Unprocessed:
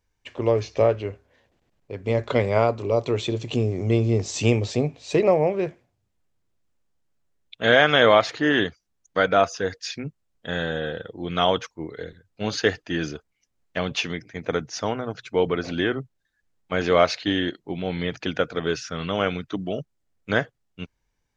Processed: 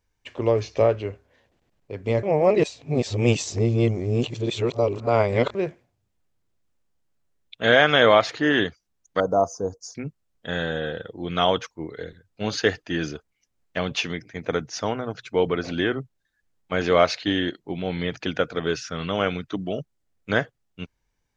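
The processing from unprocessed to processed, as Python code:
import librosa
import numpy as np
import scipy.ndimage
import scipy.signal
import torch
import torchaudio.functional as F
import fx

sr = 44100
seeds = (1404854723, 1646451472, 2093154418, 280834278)

y = fx.ellip_bandstop(x, sr, low_hz=1000.0, high_hz=6000.0, order=3, stop_db=70, at=(9.2, 9.95))
y = fx.edit(y, sr, fx.reverse_span(start_s=2.23, length_s=3.32), tone=tone)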